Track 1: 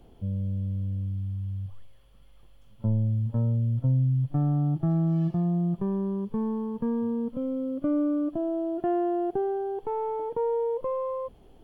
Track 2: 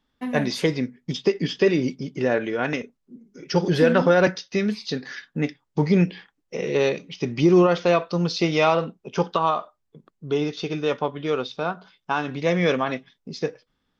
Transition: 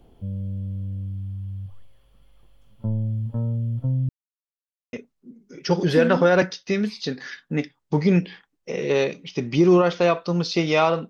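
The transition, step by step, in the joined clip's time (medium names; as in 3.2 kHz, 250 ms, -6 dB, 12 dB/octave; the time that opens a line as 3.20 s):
track 1
4.09–4.93 s: mute
4.93 s: go over to track 2 from 2.78 s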